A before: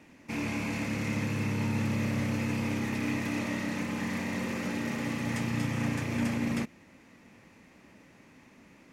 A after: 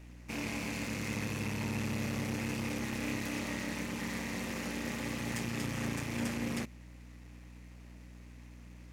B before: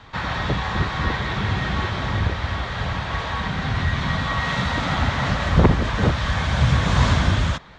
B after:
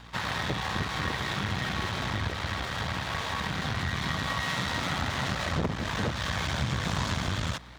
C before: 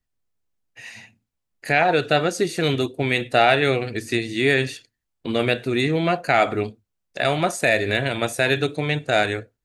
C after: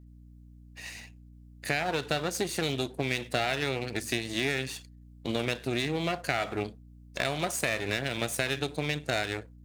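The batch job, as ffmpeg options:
-af "aeval=exprs='if(lt(val(0),0),0.251*val(0),val(0))':c=same,highpass=77,highshelf=f=3.8k:g=7.5,acompressor=threshold=-24dB:ratio=4,aeval=exprs='val(0)+0.00398*(sin(2*PI*60*n/s)+sin(2*PI*2*60*n/s)/2+sin(2*PI*3*60*n/s)/3+sin(2*PI*4*60*n/s)/4+sin(2*PI*5*60*n/s)/5)':c=same,volume=-2dB"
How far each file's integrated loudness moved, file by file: -5.0, -8.5, -9.5 LU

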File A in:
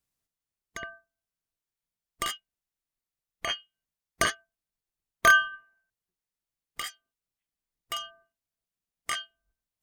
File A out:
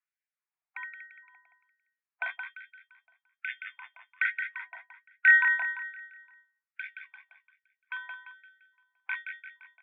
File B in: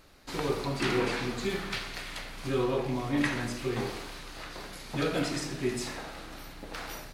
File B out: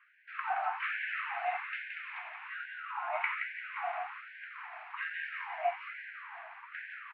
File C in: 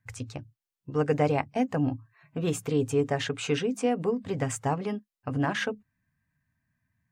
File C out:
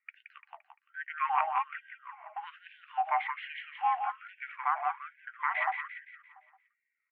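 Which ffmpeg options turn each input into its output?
-af "highpass=f=160:t=q:w=0.5412,highpass=f=160:t=q:w=1.307,lowpass=f=2.1k:t=q:w=0.5176,lowpass=f=2.1k:t=q:w=0.7071,lowpass=f=2.1k:t=q:w=1.932,afreqshift=330,aecho=1:1:172|344|516|688|860|1032:0.501|0.231|0.106|0.0488|0.0224|0.0103,afftfilt=real='re*gte(b*sr/1024,630*pow(1500/630,0.5+0.5*sin(2*PI*1.2*pts/sr)))':imag='im*gte(b*sr/1024,630*pow(1500/630,0.5+0.5*sin(2*PI*1.2*pts/sr)))':win_size=1024:overlap=0.75"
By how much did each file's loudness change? 0.0, -5.0, -4.5 LU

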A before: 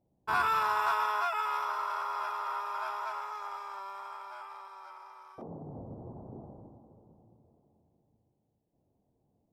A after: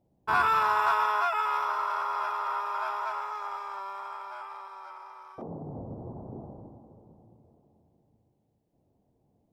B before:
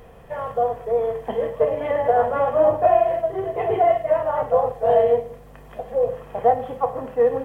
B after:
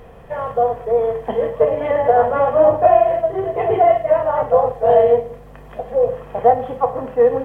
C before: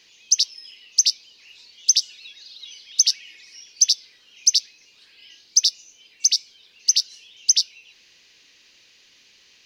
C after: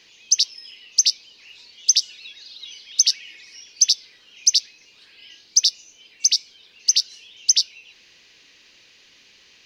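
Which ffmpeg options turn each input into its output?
-af "highshelf=f=4.4k:g=-6.5,volume=4.5dB"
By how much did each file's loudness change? +4.0, +4.5, +0.5 LU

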